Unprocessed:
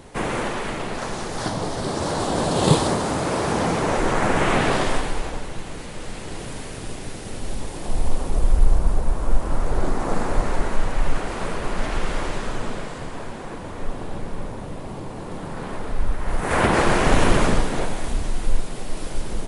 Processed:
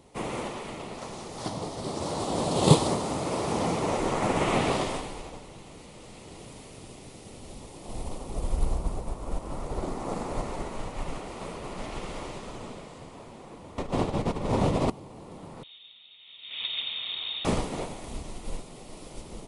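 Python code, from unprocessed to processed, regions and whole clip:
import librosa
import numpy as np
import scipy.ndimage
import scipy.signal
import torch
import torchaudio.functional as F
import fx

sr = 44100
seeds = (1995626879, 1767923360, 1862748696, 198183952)

y = fx.chain(x, sr, fx.lowpass(hz=7600.0, slope=12),
    fx.env_flatten(amount_pct=100), at=(13.78, 14.9))
y = fx.chain(y, sr, fx.ladder_highpass(hz=260.0, resonance_pct=50),
    fx.freq_invert(carrier_hz=4000), at=(15.63, 17.45))
y = fx.highpass(y, sr, hz=67.0, slope=6)
y = fx.peak_eq(y, sr, hz=1600.0, db=-12.5, octaves=0.35)
y = fx.upward_expand(y, sr, threshold_db=-33.0, expansion=1.5)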